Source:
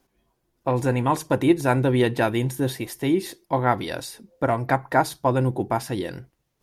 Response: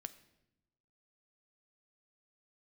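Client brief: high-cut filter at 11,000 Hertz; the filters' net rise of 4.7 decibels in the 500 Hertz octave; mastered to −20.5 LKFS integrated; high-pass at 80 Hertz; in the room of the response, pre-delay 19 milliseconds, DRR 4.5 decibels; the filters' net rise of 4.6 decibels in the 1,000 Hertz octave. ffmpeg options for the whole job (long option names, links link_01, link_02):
-filter_complex "[0:a]highpass=80,lowpass=11000,equalizer=frequency=500:width_type=o:gain=5,equalizer=frequency=1000:width_type=o:gain=4,asplit=2[link_01][link_02];[1:a]atrim=start_sample=2205,adelay=19[link_03];[link_02][link_03]afir=irnorm=-1:irlink=0,volume=0dB[link_04];[link_01][link_04]amix=inputs=2:normalize=0,volume=-1dB"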